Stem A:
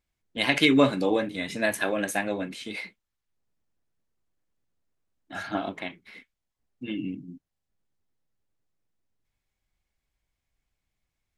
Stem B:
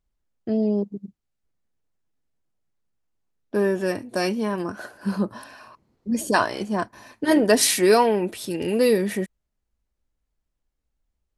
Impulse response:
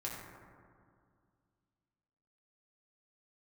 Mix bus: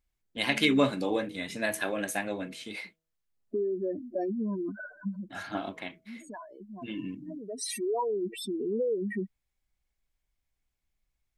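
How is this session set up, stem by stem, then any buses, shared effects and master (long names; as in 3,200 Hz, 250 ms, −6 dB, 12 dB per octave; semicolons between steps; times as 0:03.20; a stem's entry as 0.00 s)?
−4.5 dB, 0.00 s, no send, hum removal 161.3 Hz, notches 4
−3.5 dB, 0.00 s, no send, expanding power law on the bin magnitudes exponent 3.8; downward compressor 3 to 1, threshold −25 dBFS, peak gain reduction 9 dB; automatic ducking −13 dB, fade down 0.25 s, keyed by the first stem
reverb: not used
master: high-shelf EQ 6,700 Hz +4 dB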